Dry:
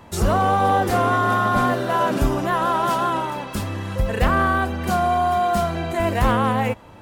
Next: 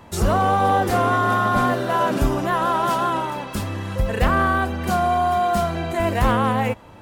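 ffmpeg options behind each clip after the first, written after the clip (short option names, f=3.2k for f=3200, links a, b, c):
-af anull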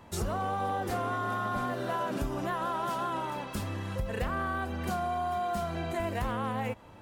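-af "acompressor=threshold=-21dB:ratio=6,volume=-7.5dB"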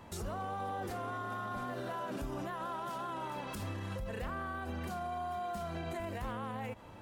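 -af "alimiter=level_in=7.5dB:limit=-24dB:level=0:latency=1:release=82,volume=-7.5dB"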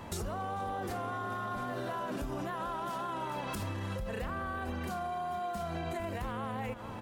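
-filter_complex "[0:a]asplit=2[a][b];[b]adelay=443.1,volume=-13dB,highshelf=f=4k:g=-9.97[c];[a][c]amix=inputs=2:normalize=0,acompressor=threshold=-41dB:ratio=6,volume=7.5dB"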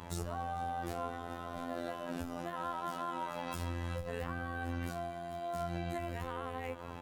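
-af "afftfilt=real='hypot(re,im)*cos(PI*b)':imag='0':win_size=2048:overlap=0.75,volume=21.5dB,asoftclip=hard,volume=-21.5dB,volume=1dB"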